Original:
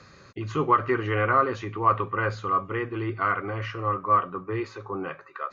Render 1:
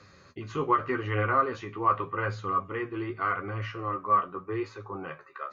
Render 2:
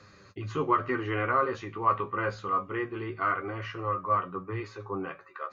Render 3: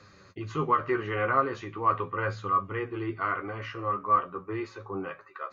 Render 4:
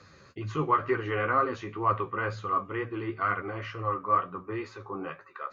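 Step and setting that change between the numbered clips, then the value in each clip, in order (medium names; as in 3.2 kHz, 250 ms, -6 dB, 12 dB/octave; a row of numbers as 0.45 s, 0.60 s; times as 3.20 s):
flange, rate: 0.84 Hz, 0.21 Hz, 0.39 Hz, 2.1 Hz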